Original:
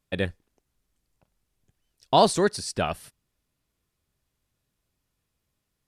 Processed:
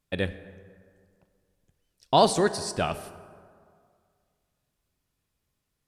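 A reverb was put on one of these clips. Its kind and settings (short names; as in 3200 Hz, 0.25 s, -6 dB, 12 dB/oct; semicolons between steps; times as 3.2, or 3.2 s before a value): plate-style reverb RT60 2.1 s, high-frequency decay 0.5×, DRR 12 dB; gain -1 dB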